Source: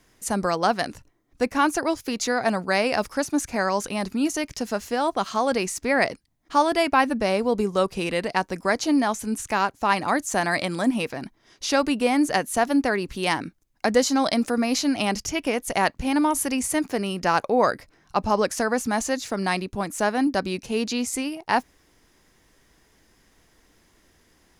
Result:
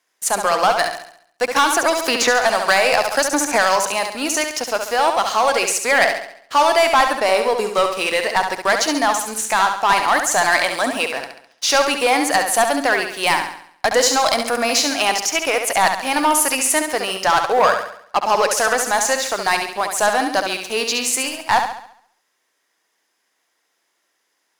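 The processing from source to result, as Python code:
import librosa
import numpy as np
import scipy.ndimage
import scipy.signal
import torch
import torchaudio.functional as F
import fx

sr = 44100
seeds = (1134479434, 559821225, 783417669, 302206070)

y = scipy.signal.sosfilt(scipy.signal.butter(2, 630.0, 'highpass', fs=sr, output='sos'), x)
y = fx.leveller(y, sr, passes=3)
y = fx.room_flutter(y, sr, wall_m=11.8, rt60_s=0.63)
y = fx.band_squash(y, sr, depth_pct=100, at=(1.56, 3.76))
y = y * librosa.db_to_amplitude(-1.0)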